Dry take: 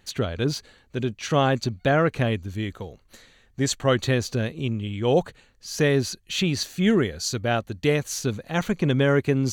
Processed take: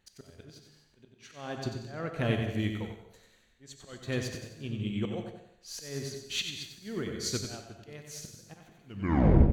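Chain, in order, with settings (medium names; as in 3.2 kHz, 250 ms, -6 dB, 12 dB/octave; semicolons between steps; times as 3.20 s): tape stop on the ending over 0.72 s; slow attack 533 ms; on a send: feedback delay 93 ms, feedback 40%, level -6 dB; on the sum: gated-style reverb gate 280 ms flat, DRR 4.5 dB; upward expansion 1.5:1, over -41 dBFS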